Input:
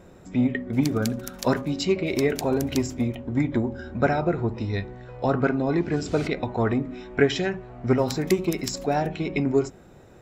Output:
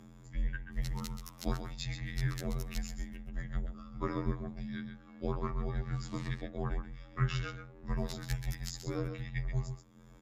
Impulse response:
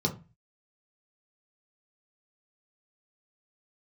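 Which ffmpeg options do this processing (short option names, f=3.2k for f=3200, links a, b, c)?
-filter_complex "[0:a]asplit=2[a][b];[b]aecho=0:1:131:0.376[c];[a][c]amix=inputs=2:normalize=0,afftfilt=real='hypot(re,im)*cos(PI*b)':imag='0':win_size=2048:overlap=0.75,acompressor=mode=upward:threshold=-36dB:ratio=2.5,afreqshift=-300,volume=-8.5dB"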